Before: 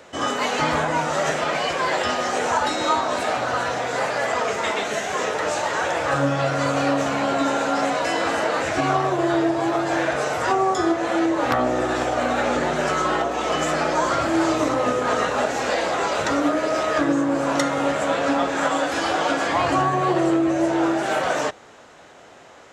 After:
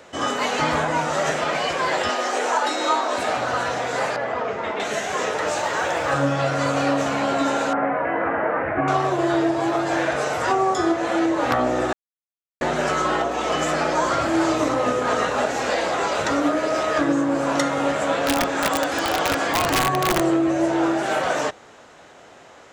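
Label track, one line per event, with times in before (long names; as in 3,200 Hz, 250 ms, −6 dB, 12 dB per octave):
2.090000	3.180000	high-pass filter 260 Hz 24 dB per octave
4.160000	4.800000	head-to-tape spacing loss at 10 kHz 28 dB
5.470000	6.110000	log-companded quantiser 8 bits
7.730000	8.880000	Butterworth low-pass 2,100 Hz
11.930000	12.610000	silence
18.130000	20.210000	wrap-around overflow gain 12.5 dB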